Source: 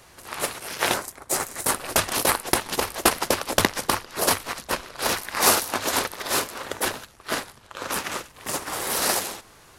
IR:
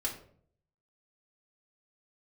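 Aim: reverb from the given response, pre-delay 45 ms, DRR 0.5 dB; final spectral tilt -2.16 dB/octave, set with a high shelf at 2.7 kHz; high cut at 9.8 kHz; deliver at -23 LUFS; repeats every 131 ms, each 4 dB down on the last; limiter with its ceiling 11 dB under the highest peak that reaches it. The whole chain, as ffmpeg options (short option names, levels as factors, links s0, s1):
-filter_complex "[0:a]lowpass=9800,highshelf=f=2700:g=4,alimiter=limit=0.282:level=0:latency=1,aecho=1:1:131|262|393|524|655|786|917|1048|1179:0.631|0.398|0.25|0.158|0.0994|0.0626|0.0394|0.0249|0.0157,asplit=2[s0][s1];[1:a]atrim=start_sample=2205,adelay=45[s2];[s1][s2]afir=irnorm=-1:irlink=0,volume=0.708[s3];[s0][s3]amix=inputs=2:normalize=0,volume=0.794"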